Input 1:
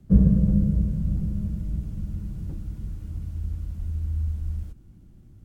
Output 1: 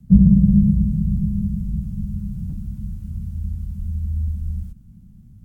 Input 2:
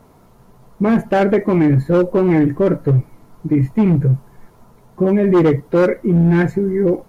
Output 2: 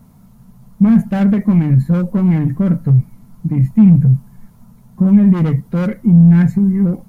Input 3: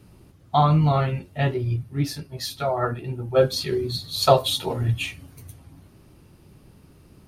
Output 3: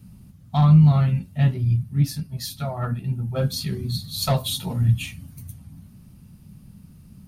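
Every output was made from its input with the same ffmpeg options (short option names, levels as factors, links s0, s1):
-af "acontrast=77,crystalizer=i=1.5:c=0,lowshelf=f=270:t=q:w=3:g=9,volume=0.224"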